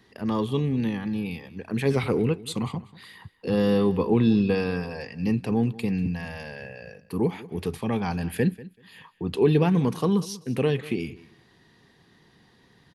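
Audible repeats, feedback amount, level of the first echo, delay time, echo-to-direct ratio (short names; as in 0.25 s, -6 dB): 2, 17%, -19.0 dB, 0.191 s, -19.0 dB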